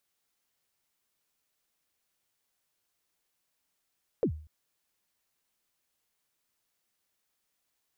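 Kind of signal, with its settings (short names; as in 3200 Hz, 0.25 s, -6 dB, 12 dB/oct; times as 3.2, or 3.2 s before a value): kick drum length 0.24 s, from 540 Hz, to 77 Hz, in 84 ms, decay 0.45 s, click off, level -20.5 dB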